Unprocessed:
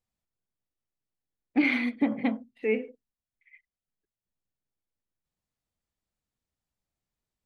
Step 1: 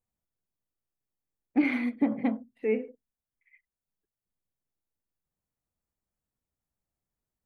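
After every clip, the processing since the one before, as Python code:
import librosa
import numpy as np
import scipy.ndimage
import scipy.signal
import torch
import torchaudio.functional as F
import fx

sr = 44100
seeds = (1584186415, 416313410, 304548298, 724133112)

y = fx.peak_eq(x, sr, hz=3700.0, db=-10.0, octaves=1.8)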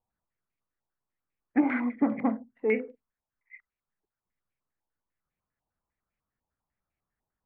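y = fx.filter_held_lowpass(x, sr, hz=10.0, low_hz=890.0, high_hz=2300.0)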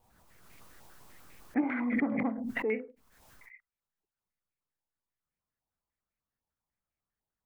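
y = fx.pre_swell(x, sr, db_per_s=28.0)
y = y * 10.0 ** (-6.0 / 20.0)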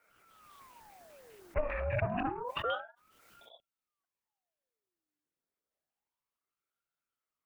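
y = fx.ring_lfo(x, sr, carrier_hz=850.0, swing_pct=65, hz=0.29)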